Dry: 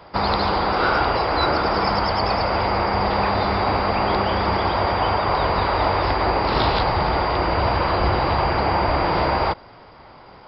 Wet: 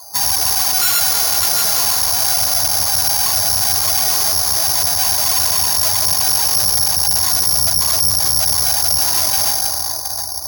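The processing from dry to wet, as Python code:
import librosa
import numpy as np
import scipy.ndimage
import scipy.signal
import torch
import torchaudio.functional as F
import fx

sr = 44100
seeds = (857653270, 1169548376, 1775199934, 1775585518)

p1 = fx.spec_expand(x, sr, power=3.3)
p2 = p1 + 0.89 * np.pad(p1, (int(2.8 * sr / 1000.0), 0))[:len(p1)]
p3 = p2 + fx.echo_feedback(p2, sr, ms=717, feedback_pct=59, wet_db=-14.0, dry=0)
p4 = fx.rev_gated(p3, sr, seeds[0], gate_ms=450, shape='flat', drr_db=5.0)
p5 = (np.kron(scipy.signal.resample_poly(p4, 1, 8), np.eye(8)[0]) * 8)[:len(p4)]
p6 = fx.tube_stage(p5, sr, drive_db=9.0, bias=0.7)
p7 = scipy.signal.sosfilt(scipy.signal.butter(4, 77.0, 'highpass', fs=sr, output='sos'), p6)
p8 = fx.peak_eq(p7, sr, hz=340.0, db=-10.5, octaves=1.2)
y = p8 * librosa.db_to_amplitude(2.0)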